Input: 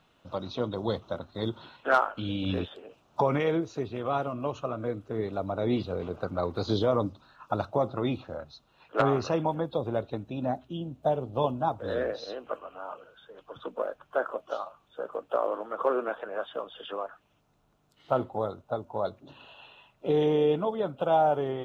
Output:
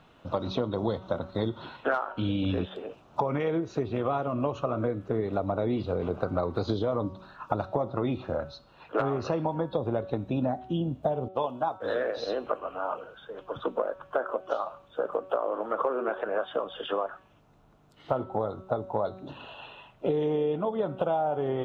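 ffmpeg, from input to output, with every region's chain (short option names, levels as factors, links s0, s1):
-filter_complex "[0:a]asettb=1/sr,asplit=3[s0][s1][s2];[s0]atrim=end=11.284[s3];[s1]atrim=start=11.28:end=12.17,asetpts=PTS-STARTPTS,afade=t=in:d=0.004:c=qsin,afade=t=out:st=0.886:d=0.004:c=qsin,highpass=f=730:p=1,agate=range=0.0224:threshold=0.00562:ratio=3:release=100:detection=peak[s4];[s2]atrim=start=12.166[s5];[s3][s4]acrossfade=d=0.004:c1=hsin:c2=qsin[s6];[s6][s5]acrossfade=d=0.004:c1=qsin:c2=hsin,highshelf=f=3200:g=-9.5,bandreject=f=188.2:t=h:w=4,bandreject=f=376.4:t=h:w=4,bandreject=f=564.6:t=h:w=4,bandreject=f=752.8:t=h:w=4,bandreject=f=941:t=h:w=4,bandreject=f=1129.2:t=h:w=4,bandreject=f=1317.4:t=h:w=4,bandreject=f=1505.6:t=h:w=4,bandreject=f=1693.8:t=h:w=4,bandreject=f=1882:t=h:w=4,bandreject=f=2070.2:t=h:w=4,bandreject=f=2258.4:t=h:w=4,bandreject=f=2446.6:t=h:w=4,bandreject=f=2634.8:t=h:w=4,bandreject=f=2823:t=h:w=4,bandreject=f=3011.2:t=h:w=4,bandreject=f=3199.4:t=h:w=4,bandreject=f=3387.6:t=h:w=4,bandreject=f=3575.8:t=h:w=4,bandreject=f=3764:t=h:w=4,bandreject=f=3952.2:t=h:w=4,bandreject=f=4140.4:t=h:w=4,bandreject=f=4328.6:t=h:w=4,bandreject=f=4516.8:t=h:w=4,bandreject=f=4705:t=h:w=4,bandreject=f=4893.2:t=h:w=4,bandreject=f=5081.4:t=h:w=4,bandreject=f=5269.6:t=h:w=4,bandreject=f=5457.8:t=h:w=4,bandreject=f=5646:t=h:w=4,bandreject=f=5834.2:t=h:w=4,acompressor=threshold=0.0224:ratio=12,volume=2.82"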